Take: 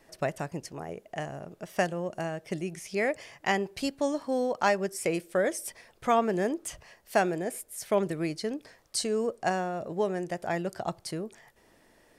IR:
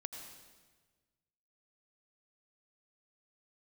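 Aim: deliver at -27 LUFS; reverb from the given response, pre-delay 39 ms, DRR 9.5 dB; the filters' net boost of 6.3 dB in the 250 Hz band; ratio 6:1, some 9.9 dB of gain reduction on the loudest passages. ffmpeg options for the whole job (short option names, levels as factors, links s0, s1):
-filter_complex "[0:a]equalizer=f=250:t=o:g=8.5,acompressor=threshold=0.0398:ratio=6,asplit=2[s0][s1];[1:a]atrim=start_sample=2205,adelay=39[s2];[s1][s2]afir=irnorm=-1:irlink=0,volume=0.422[s3];[s0][s3]amix=inputs=2:normalize=0,volume=2.11"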